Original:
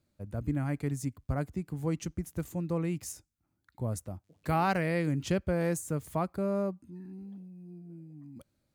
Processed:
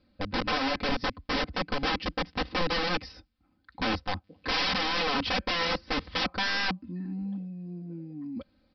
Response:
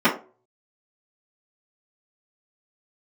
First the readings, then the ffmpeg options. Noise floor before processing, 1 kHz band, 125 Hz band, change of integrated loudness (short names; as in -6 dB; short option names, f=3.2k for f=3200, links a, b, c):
-79 dBFS, +5.5 dB, -7.0 dB, +3.0 dB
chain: -af "aresample=11025,aeval=exprs='(mod(44.7*val(0)+1,2)-1)/44.7':c=same,aresample=44100,aecho=1:1:3.9:0.86,volume=8dB"